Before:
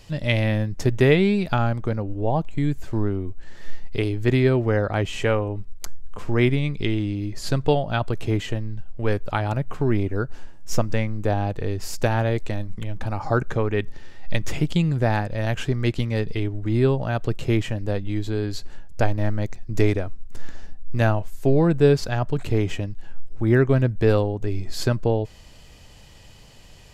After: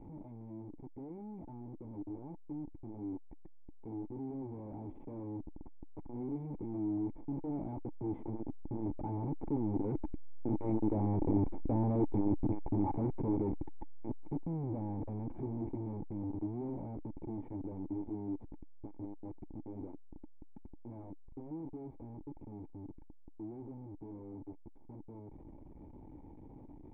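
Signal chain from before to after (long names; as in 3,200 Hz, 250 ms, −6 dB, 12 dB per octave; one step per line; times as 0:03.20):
sign of each sample alone
source passing by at 0:11.70, 11 m/s, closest 15 metres
formant resonators in series u
level +4.5 dB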